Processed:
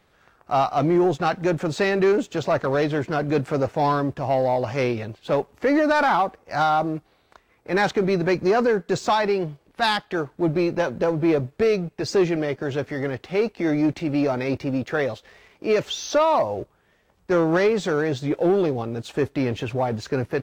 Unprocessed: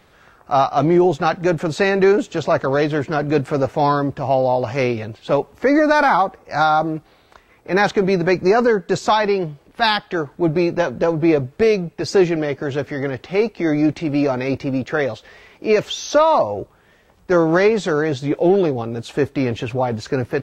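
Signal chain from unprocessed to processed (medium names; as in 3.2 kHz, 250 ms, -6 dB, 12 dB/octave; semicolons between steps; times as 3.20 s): waveshaping leveller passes 1; trim -7 dB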